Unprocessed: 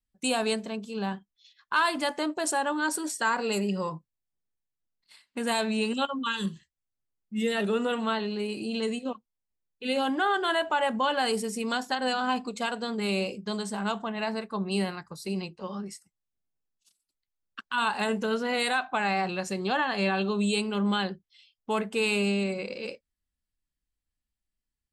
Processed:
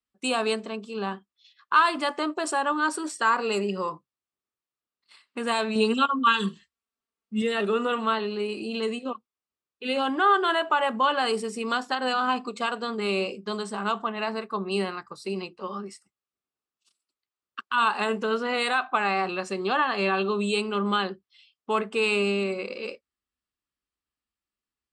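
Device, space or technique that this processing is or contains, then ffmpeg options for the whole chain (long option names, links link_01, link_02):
car door speaker: -filter_complex "[0:a]highpass=90,equalizer=frequency=95:width_type=q:width=4:gain=-8,equalizer=frequency=160:width_type=q:width=4:gain=-9,equalizer=frequency=390:width_type=q:width=4:gain=5,equalizer=frequency=1200:width_type=q:width=4:gain=10,equalizer=frequency=2700:width_type=q:width=4:gain=3,equalizer=frequency=6500:width_type=q:width=4:gain=-6,lowpass=frequency=8800:width=0.5412,lowpass=frequency=8800:width=1.3066,asettb=1/sr,asplit=3[link_01][link_02][link_03];[link_01]atrim=end=5.754[link_04];[link_02]atrim=start=5.75:end=7.42,asetpts=PTS-STARTPTS,afade=type=in:duration=0.004:curve=qsin,afade=type=out:start_time=1.666:duration=0.004:curve=qsin,aecho=1:1:4.4:0.91,atrim=end_sample=73647[link_05];[link_03]atrim=start=7.416[link_06];[link_04][link_05]acrossfade=duration=0.004:curve1=hsin:curve2=qsin[link_07];[link_07][link_06]acrossfade=duration=0.004:curve1=qsin:curve2=hsin"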